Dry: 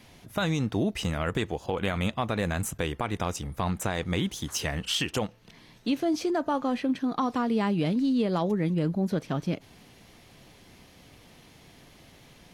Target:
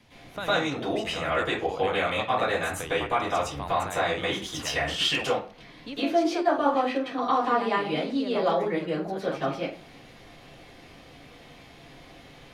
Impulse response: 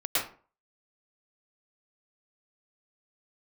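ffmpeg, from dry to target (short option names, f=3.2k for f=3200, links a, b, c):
-filter_complex "[0:a]highshelf=f=8.6k:g=-11,acrossover=split=370|1000[a][b][c];[a]acompressor=threshold=-39dB:ratio=10[d];[d][b][c]amix=inputs=3:normalize=0[e];[1:a]atrim=start_sample=2205[f];[e][f]afir=irnorm=-1:irlink=0,volume=-3.5dB"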